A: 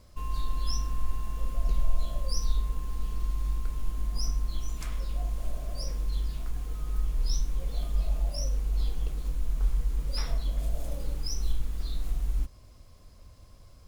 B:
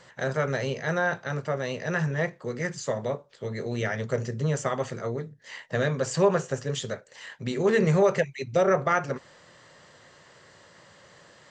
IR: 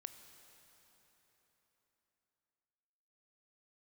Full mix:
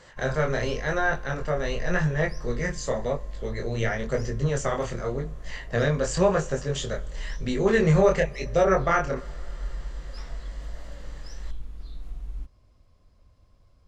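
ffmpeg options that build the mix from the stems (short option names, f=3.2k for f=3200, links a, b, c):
-filter_complex "[0:a]aemphasis=mode=reproduction:type=50fm,volume=-7dB[a];[1:a]flanger=delay=19.5:depth=7.3:speed=0.93,volume=2.5dB,asplit=2[b][c];[c]volume=-6.5dB[d];[2:a]atrim=start_sample=2205[e];[d][e]afir=irnorm=-1:irlink=0[f];[a][b][f]amix=inputs=3:normalize=0"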